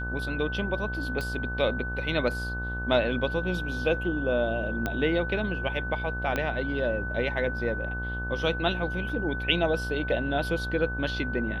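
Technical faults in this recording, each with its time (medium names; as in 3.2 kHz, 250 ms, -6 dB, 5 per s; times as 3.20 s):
buzz 60 Hz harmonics 22 -34 dBFS
whine 1.5 kHz -33 dBFS
1.21 s: pop -19 dBFS
4.86 s: pop -15 dBFS
6.36 s: pop -14 dBFS
9.09 s: dropout 3.3 ms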